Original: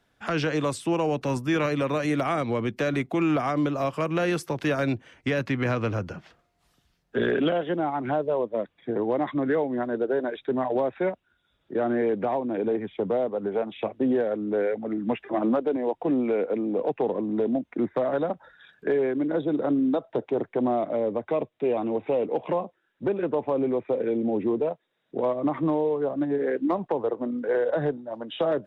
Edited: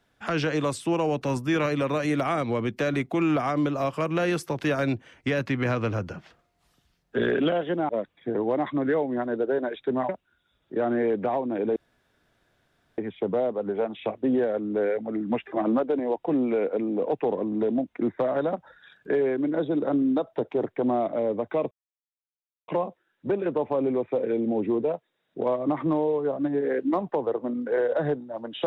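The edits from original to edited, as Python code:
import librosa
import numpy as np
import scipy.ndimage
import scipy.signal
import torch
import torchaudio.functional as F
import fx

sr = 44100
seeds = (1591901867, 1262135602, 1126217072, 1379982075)

y = fx.edit(x, sr, fx.cut(start_s=7.89, length_s=0.61),
    fx.cut(start_s=10.7, length_s=0.38),
    fx.insert_room_tone(at_s=12.75, length_s=1.22),
    fx.silence(start_s=21.48, length_s=0.97), tone=tone)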